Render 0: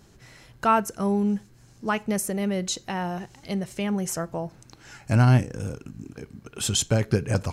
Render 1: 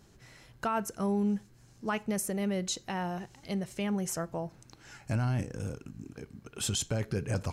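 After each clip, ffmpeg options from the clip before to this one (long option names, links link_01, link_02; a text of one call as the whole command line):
ffmpeg -i in.wav -af "alimiter=limit=-16.5dB:level=0:latency=1:release=24,volume=-5dB" out.wav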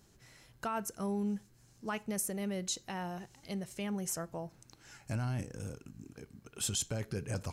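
ffmpeg -i in.wav -af "highshelf=frequency=5500:gain=7,volume=-5.5dB" out.wav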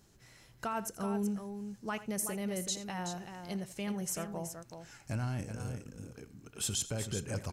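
ffmpeg -i in.wav -af "aecho=1:1:84|377:0.158|0.398" out.wav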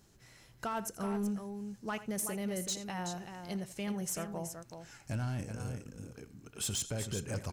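ffmpeg -i in.wav -af "asoftclip=type=hard:threshold=-29.5dB" out.wav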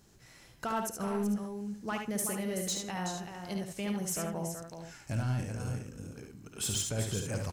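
ffmpeg -i in.wav -af "aecho=1:1:54|72:0.282|0.531,volume=1.5dB" out.wav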